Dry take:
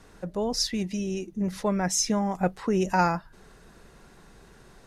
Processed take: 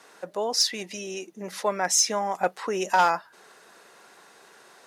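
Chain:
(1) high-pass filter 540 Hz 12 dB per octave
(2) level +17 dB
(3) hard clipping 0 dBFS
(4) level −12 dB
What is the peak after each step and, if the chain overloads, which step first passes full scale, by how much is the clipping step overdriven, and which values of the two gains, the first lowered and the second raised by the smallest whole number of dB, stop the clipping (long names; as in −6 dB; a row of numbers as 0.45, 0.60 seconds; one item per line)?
−11.0, +6.0, 0.0, −12.0 dBFS
step 2, 6.0 dB
step 2 +11 dB, step 4 −6 dB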